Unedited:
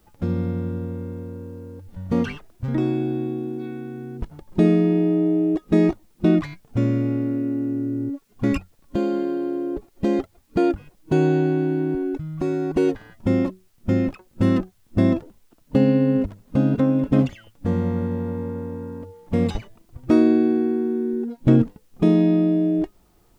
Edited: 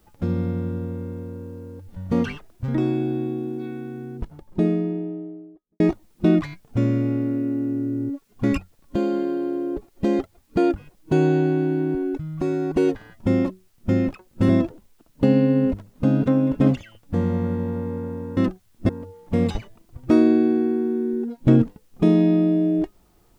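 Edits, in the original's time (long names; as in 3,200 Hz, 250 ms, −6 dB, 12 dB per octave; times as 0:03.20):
0:03.86–0:05.80: fade out and dull
0:14.49–0:15.01: move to 0:18.89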